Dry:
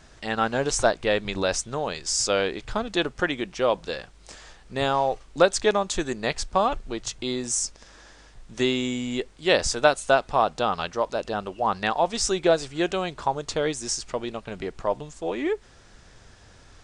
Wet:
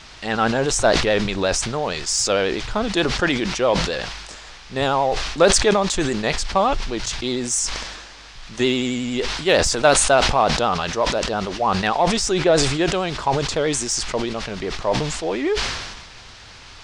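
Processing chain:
pitch vibrato 11 Hz 50 cents
noise in a band 710–5,400 Hz −49 dBFS
in parallel at −6 dB: soft clipping −19.5 dBFS, distortion −10 dB
0:12.06–0:12.64: on the sum: high-shelf EQ 5,000 Hz −4.5 dB
level that may fall only so fast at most 42 dB per second
level +1 dB

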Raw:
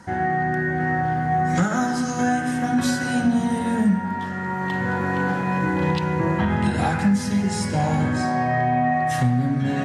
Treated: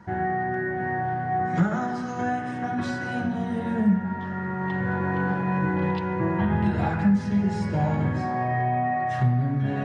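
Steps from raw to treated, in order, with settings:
head-to-tape spacing loss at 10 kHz 25 dB
notch comb filter 260 Hz
hum removal 78.09 Hz, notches 17

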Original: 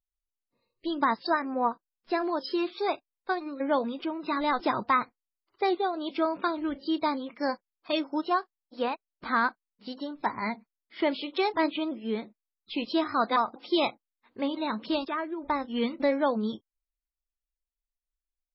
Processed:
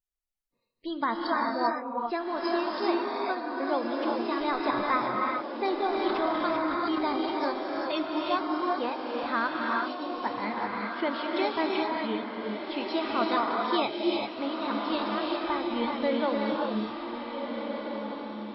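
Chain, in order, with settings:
feedback delay with all-pass diffusion 1,527 ms, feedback 40%, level −6 dB
reverb whose tail is shaped and stops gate 420 ms rising, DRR −0.5 dB
0:05.94–0:07.32: transient designer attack 0 dB, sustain +6 dB
level −3.5 dB

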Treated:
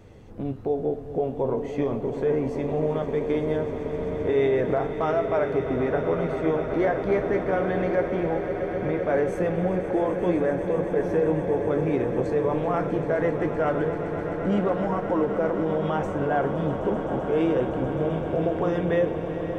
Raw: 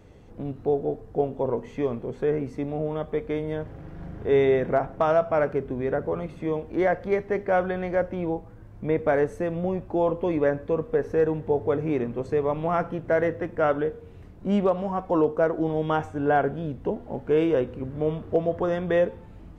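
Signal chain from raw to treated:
brickwall limiter −19 dBFS, peak gain reduction 7 dB
echo that builds up and dies away 129 ms, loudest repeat 8, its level −14 dB
flanger 0.2 Hz, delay 8.5 ms, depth 7.6 ms, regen −59%
level +6.5 dB

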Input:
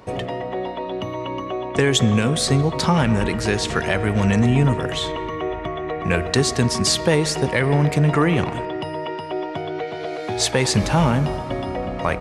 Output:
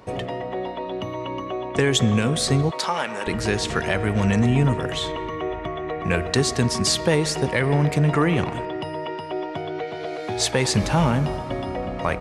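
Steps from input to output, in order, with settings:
0:02.71–0:03.27: high-pass filter 540 Hz 12 dB per octave
level −2 dB

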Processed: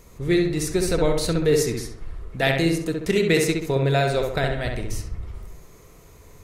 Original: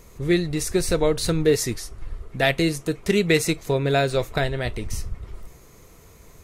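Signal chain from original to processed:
feedback echo with a low-pass in the loop 66 ms, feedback 49%, low-pass 2,600 Hz, level −3 dB
level −1.5 dB

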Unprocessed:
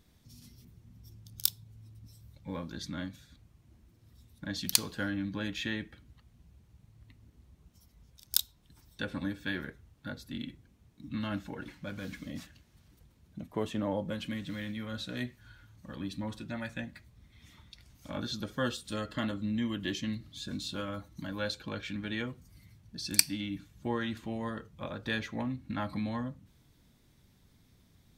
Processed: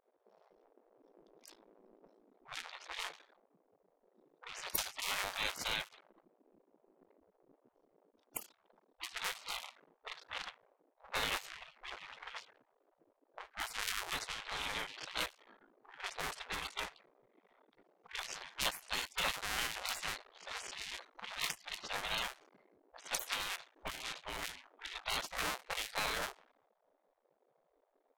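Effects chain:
sub-harmonics by changed cycles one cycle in 2, muted
low-pass that shuts in the quiet parts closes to 410 Hz, open at −34 dBFS
gate on every frequency bin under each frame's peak −20 dB weak
level +12 dB

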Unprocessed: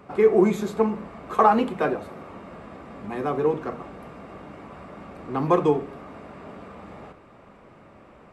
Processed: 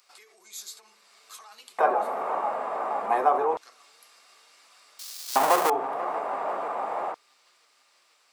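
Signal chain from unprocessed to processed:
0:04.99–0:05.70: each half-wave held at its own peak
parametric band 3,200 Hz −9.5 dB 2.5 octaves
mains-hum notches 50/100/150/200/250/300/350 Hz
in parallel at +2 dB: downward compressor, threshold −35 dBFS, peak gain reduction 20.5 dB
on the sum: brickwall limiter −18.5 dBFS, peak gain reduction 11.5 dB
on a send: delay with a low-pass on its return 488 ms, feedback 77%, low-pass 1,800 Hz, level −13 dB
on the sum: auto-filter high-pass square 0.28 Hz 790–4,600 Hz
level +5 dB

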